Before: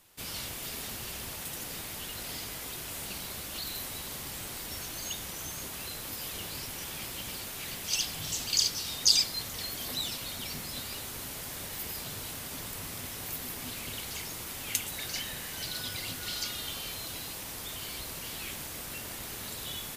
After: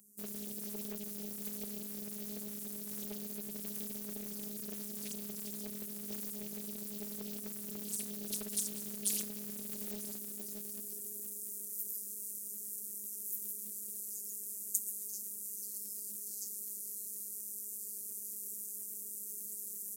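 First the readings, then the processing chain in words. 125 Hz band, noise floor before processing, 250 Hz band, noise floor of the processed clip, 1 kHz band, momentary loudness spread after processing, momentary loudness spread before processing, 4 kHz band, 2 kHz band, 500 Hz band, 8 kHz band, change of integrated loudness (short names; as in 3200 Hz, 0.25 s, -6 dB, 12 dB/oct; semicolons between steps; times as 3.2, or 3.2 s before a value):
-10.0 dB, -41 dBFS, +0.5 dB, -45 dBFS, -19.0 dB, 5 LU, 8 LU, -20.0 dB, -20.0 dB, -4.0 dB, -5.0 dB, -5.5 dB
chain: inverse Chebyshev band-stop 700–3500 Hz, stop band 50 dB; bell 570 Hz -6 dB 1.6 oct; high-pass sweep 230 Hz -> 570 Hz, 9.24–11.97; robotiser 207 Hz; HPF 120 Hz 24 dB/oct; Doppler distortion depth 0.98 ms; gain +4 dB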